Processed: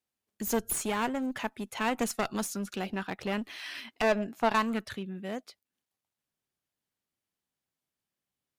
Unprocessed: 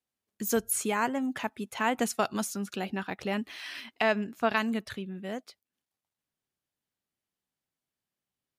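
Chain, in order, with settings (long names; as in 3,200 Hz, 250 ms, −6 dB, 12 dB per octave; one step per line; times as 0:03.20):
asymmetric clip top −32.5 dBFS
0:04.02–0:04.85: parametric band 480 Hz → 1,500 Hz +11.5 dB 0.43 octaves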